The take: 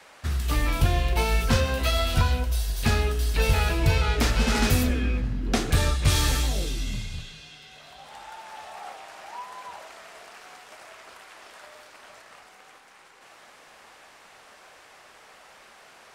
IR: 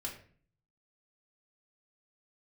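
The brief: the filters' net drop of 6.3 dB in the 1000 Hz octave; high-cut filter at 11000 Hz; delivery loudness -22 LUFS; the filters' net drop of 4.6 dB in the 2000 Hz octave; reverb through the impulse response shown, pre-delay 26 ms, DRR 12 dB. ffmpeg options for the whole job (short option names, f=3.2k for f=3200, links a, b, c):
-filter_complex "[0:a]lowpass=11k,equalizer=f=1k:t=o:g=-7.5,equalizer=f=2k:t=o:g=-4,asplit=2[a][b];[1:a]atrim=start_sample=2205,adelay=26[c];[b][c]afir=irnorm=-1:irlink=0,volume=-11.5dB[d];[a][d]amix=inputs=2:normalize=0,volume=3.5dB"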